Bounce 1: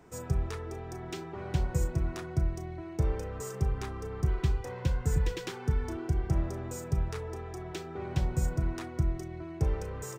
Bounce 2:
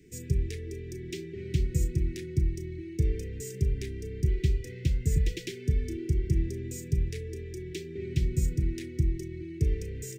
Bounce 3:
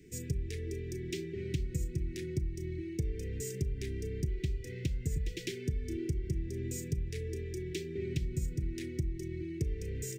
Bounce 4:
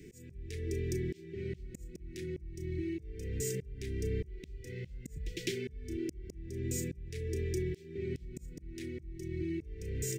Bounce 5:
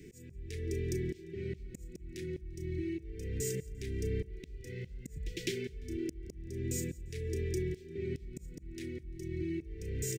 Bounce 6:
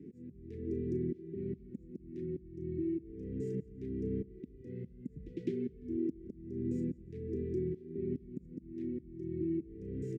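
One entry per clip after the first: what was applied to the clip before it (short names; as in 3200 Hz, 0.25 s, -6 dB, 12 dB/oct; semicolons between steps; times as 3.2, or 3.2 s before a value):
elliptic band-stop 410–2000 Hz, stop band 40 dB; gain +2.5 dB
compressor 6:1, threshold -30 dBFS, peak gain reduction 10.5 dB
auto swell 0.541 s; gain +5 dB
feedback echo 0.173 s, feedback 38%, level -23 dB
band-pass 240 Hz, Q 2.3; gain +8 dB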